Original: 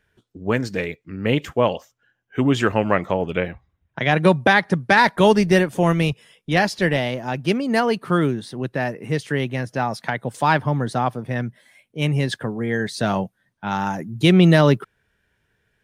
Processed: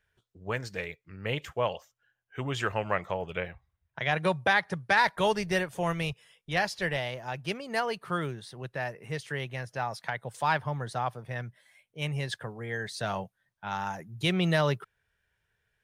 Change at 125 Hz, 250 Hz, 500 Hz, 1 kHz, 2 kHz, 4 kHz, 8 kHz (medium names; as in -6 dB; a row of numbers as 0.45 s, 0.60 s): -12.5 dB, -16.0 dB, -11.5 dB, -8.5 dB, -8.0 dB, -7.5 dB, -7.5 dB